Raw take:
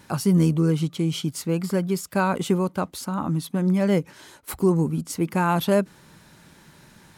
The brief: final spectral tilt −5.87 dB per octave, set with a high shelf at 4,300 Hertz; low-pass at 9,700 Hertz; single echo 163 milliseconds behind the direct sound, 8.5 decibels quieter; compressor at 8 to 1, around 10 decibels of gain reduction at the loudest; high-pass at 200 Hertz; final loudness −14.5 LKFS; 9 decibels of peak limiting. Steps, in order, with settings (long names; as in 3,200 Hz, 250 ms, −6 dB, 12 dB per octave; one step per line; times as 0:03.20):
high-pass filter 200 Hz
low-pass filter 9,700 Hz
high-shelf EQ 4,300 Hz −9 dB
downward compressor 8 to 1, threshold −26 dBFS
brickwall limiter −23.5 dBFS
single-tap delay 163 ms −8.5 dB
level +19.5 dB